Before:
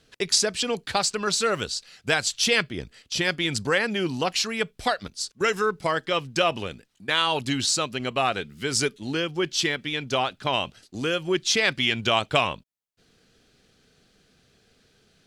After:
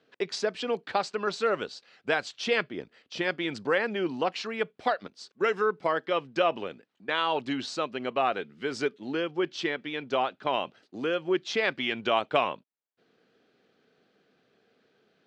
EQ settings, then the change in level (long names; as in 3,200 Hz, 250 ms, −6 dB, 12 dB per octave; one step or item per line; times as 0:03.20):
band-pass filter 280–4,200 Hz
high-shelf EQ 2,200 Hz −11.5 dB
0.0 dB